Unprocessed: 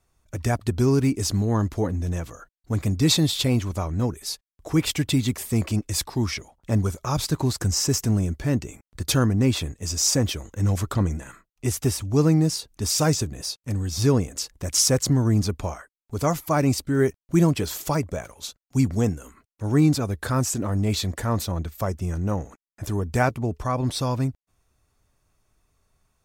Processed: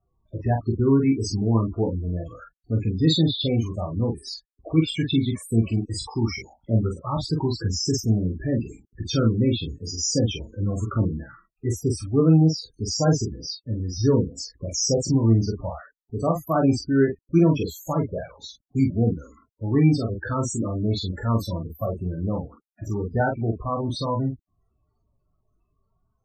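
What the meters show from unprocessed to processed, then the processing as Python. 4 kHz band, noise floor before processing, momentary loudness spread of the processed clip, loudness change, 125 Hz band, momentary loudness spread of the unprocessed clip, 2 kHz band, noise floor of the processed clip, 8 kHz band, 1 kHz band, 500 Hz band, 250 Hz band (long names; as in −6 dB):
−2.5 dB, below −85 dBFS, 13 LU, 0.0 dB, 0.0 dB, 11 LU, −3.5 dB, −74 dBFS, −6.0 dB, −1.0 dB, +1.0 dB, +1.0 dB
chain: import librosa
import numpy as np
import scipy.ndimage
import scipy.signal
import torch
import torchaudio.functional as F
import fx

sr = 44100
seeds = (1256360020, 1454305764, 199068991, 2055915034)

y = fx.low_shelf(x, sr, hz=130.0, db=-4.0)
y = fx.spec_topn(y, sr, count=16)
y = fx.room_early_taps(y, sr, ms=(18, 44), db=(-7.0, -4.5))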